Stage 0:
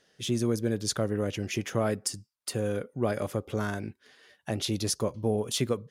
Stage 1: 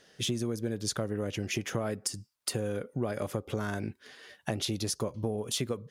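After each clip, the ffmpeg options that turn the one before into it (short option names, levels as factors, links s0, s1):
-af "acompressor=threshold=0.0178:ratio=6,volume=2"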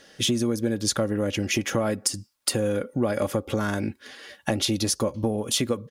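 -af "aecho=1:1:3.6:0.39,volume=2.37"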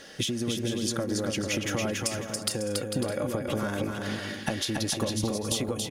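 -af "acompressor=threshold=0.0251:ratio=12,aecho=1:1:280|448|548.8|609.3|645.6:0.631|0.398|0.251|0.158|0.1,volume=1.78"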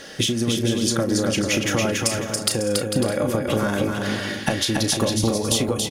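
-filter_complex "[0:a]asplit=2[s0][s1];[s1]adelay=35,volume=0.299[s2];[s0][s2]amix=inputs=2:normalize=0,volume=2.37"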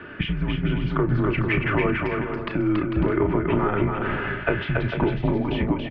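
-af "highpass=f=270:t=q:w=0.5412,highpass=f=270:t=q:w=1.307,lowpass=f=2600:t=q:w=0.5176,lowpass=f=2600:t=q:w=0.7071,lowpass=f=2600:t=q:w=1.932,afreqshift=-190,volume=1.33"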